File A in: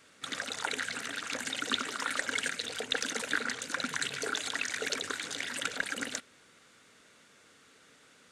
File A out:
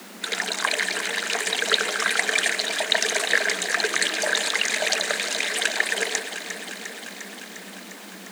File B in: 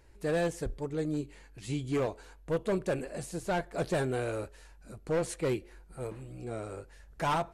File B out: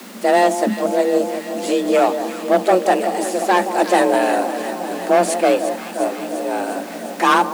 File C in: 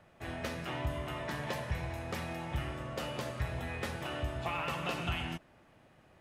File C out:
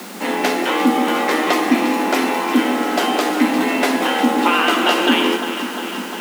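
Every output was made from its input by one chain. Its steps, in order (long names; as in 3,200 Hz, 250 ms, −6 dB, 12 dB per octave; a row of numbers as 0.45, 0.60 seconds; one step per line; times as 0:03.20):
delay that swaps between a low-pass and a high-pass 176 ms, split 870 Hz, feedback 86%, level −9.5 dB
background noise pink −53 dBFS
frequency shifter +180 Hz
normalise the peak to −2 dBFS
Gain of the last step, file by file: +10.0, +15.0, +19.5 decibels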